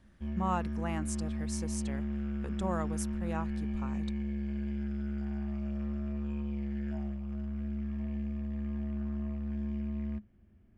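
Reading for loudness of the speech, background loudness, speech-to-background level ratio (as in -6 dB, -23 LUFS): -39.0 LUFS, -36.5 LUFS, -2.5 dB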